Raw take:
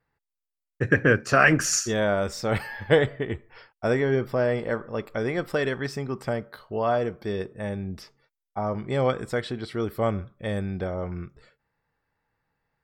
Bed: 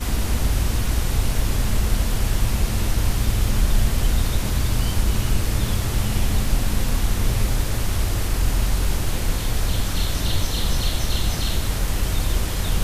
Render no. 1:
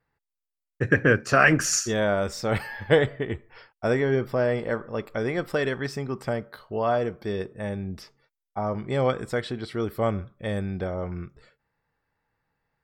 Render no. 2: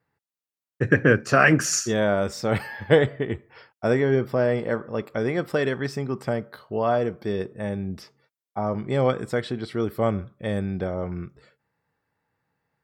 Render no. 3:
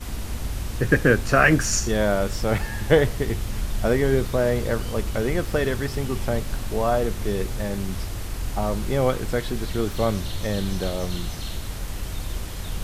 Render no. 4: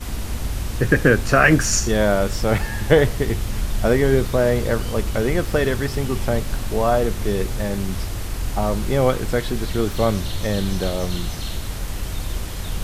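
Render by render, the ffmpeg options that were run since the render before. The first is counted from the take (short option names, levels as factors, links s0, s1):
-af anull
-af "highpass=100,lowshelf=f=490:g=4"
-filter_complex "[1:a]volume=0.376[s0];[0:a][s0]amix=inputs=2:normalize=0"
-af "volume=1.5,alimiter=limit=0.708:level=0:latency=1"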